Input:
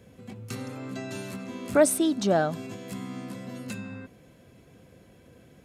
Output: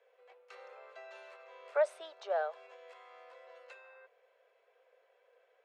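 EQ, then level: steep high-pass 450 Hz 72 dB/octave; low-pass 2.5 kHz 12 dB/octave; -8.5 dB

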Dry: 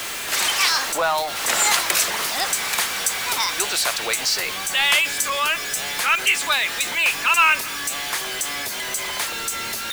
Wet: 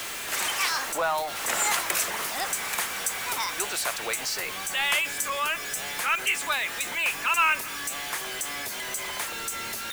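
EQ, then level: dynamic bell 4.3 kHz, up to -6 dB, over -33 dBFS, Q 1.2; -5.0 dB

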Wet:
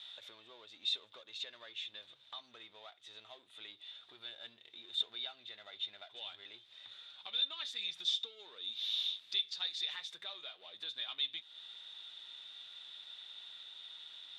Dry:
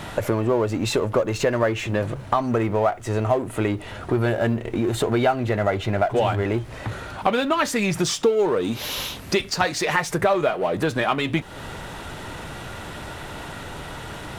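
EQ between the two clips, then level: band-pass filter 3.6 kHz, Q 19; +3.5 dB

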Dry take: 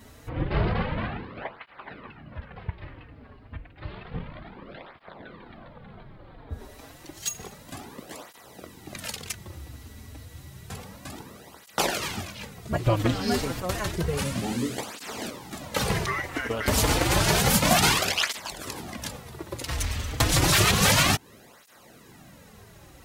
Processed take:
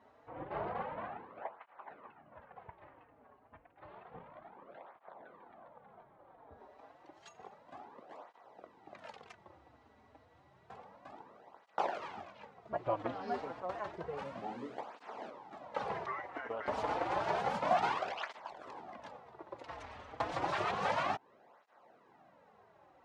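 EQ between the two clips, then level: band-pass filter 800 Hz, Q 1.7; distance through air 75 m; -4.0 dB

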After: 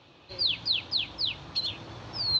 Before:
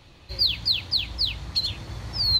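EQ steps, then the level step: cabinet simulation 170–5300 Hz, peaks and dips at 200 Hz -5 dB, 2 kHz -7 dB, 4.5 kHz -6 dB; 0.0 dB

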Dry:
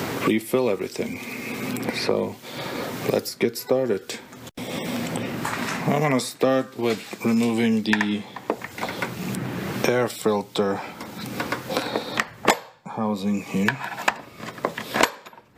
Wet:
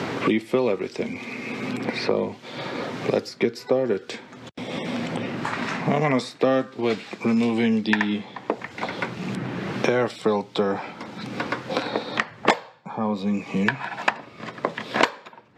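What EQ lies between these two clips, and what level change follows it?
high-pass 100 Hz; low-pass 4.5 kHz 12 dB/octave; 0.0 dB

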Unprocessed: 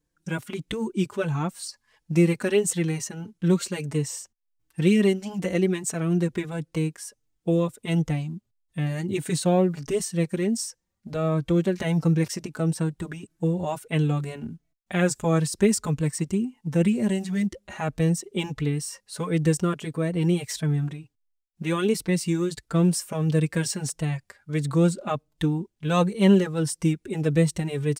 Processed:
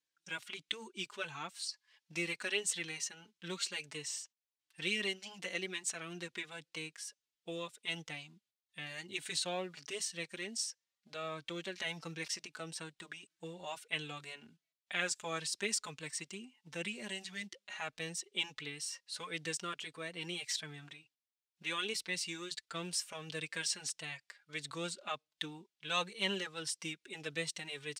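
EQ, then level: band-pass filter 3.5 kHz, Q 1.1; 0.0 dB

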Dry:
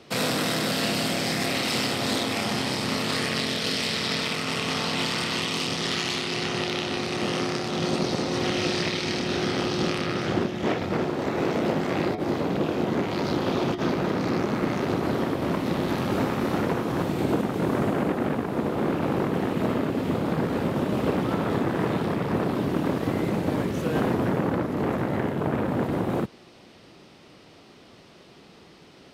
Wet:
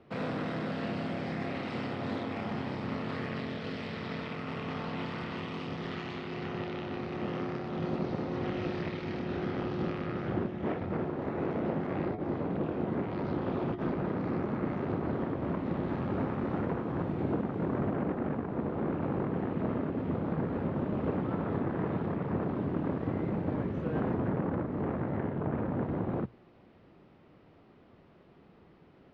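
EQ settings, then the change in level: low-pass 1.8 kHz 12 dB/octave; bass shelf 130 Hz +8.5 dB; hum notches 60/120 Hz; -8.5 dB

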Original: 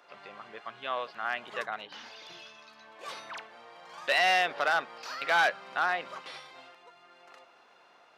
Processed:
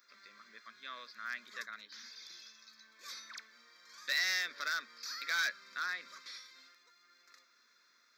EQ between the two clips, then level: differentiator; peaking EQ 230 Hz +15 dB 0.75 oct; static phaser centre 2.9 kHz, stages 6; +6.5 dB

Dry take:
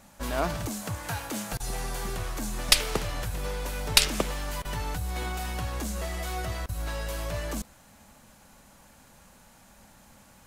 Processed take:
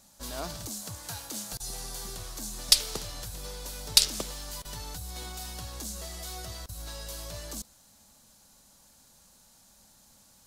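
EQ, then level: resonant high shelf 3.2 kHz +9 dB, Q 1.5; -9.0 dB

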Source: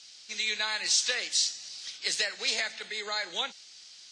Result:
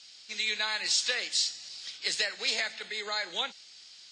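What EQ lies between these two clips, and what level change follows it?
distance through air 76 m; treble shelf 7.3 kHz +10 dB; band-stop 6 kHz, Q 10; 0.0 dB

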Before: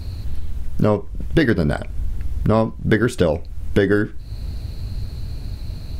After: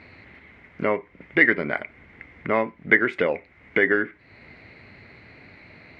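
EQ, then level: high-pass 300 Hz 12 dB/octave; resonant low-pass 2.1 kHz, resonance Q 11; -4.5 dB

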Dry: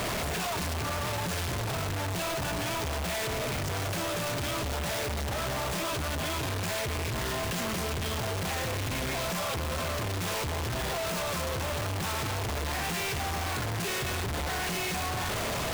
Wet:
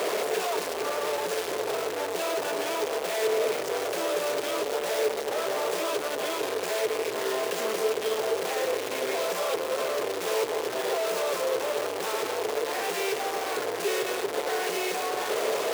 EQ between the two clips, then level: resonant high-pass 440 Hz, resonance Q 4.9; 0.0 dB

